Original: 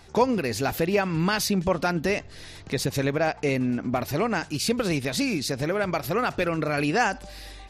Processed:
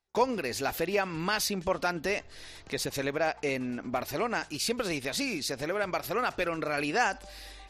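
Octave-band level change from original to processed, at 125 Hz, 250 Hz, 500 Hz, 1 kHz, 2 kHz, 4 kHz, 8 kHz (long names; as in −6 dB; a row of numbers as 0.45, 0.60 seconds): −12.0, −9.0, −5.0, −3.5, −3.0, −3.0, −3.0 decibels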